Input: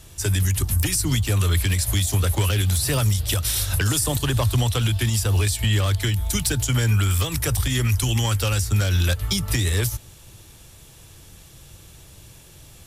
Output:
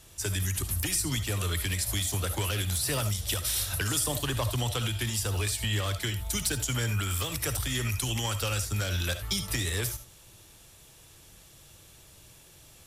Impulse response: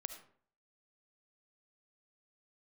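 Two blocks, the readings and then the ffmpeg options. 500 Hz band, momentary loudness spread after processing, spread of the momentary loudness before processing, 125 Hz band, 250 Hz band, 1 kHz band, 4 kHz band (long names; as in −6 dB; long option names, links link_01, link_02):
−6.5 dB, 3 LU, 2 LU, −11.0 dB, −8.5 dB, −5.5 dB, −5.0 dB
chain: -filter_complex "[0:a]lowshelf=frequency=210:gain=-7[link_01];[1:a]atrim=start_sample=2205,atrim=end_sample=3969[link_02];[link_01][link_02]afir=irnorm=-1:irlink=0,volume=-2dB"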